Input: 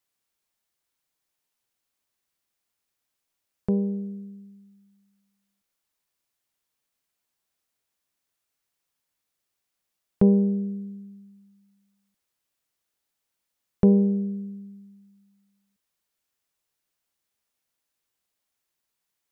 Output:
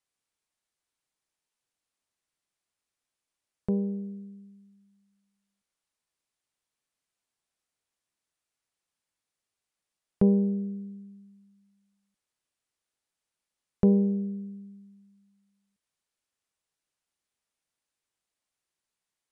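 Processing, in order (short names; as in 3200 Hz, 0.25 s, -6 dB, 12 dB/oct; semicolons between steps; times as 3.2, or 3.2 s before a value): Chebyshev low-pass 9900 Hz, order 3; gain -3.5 dB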